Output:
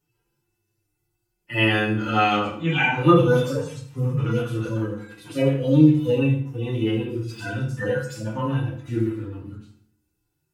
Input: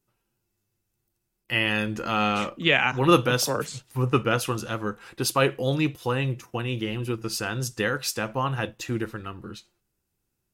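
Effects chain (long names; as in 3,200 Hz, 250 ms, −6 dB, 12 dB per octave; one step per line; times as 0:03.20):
harmonic-percussive split with one part muted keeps harmonic
mains-hum notches 60/120 Hz
feedback delay network reverb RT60 0.55 s, low-frequency decay 1.3×, high-frequency decay 0.8×, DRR −4 dB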